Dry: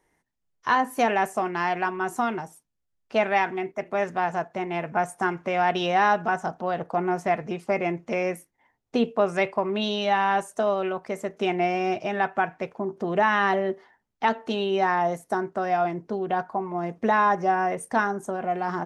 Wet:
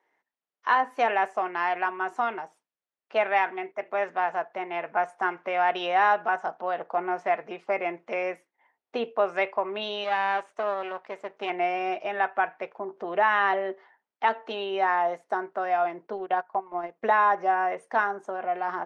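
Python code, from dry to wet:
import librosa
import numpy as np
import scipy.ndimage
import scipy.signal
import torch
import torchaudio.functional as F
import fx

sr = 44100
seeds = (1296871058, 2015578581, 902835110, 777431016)

y = fx.halfwave_gain(x, sr, db=-12.0, at=(10.04, 11.5))
y = fx.bandpass_edges(y, sr, low_hz=500.0, high_hz=3100.0)
y = fx.transient(y, sr, attack_db=2, sustain_db=-11, at=(16.03, 17.16))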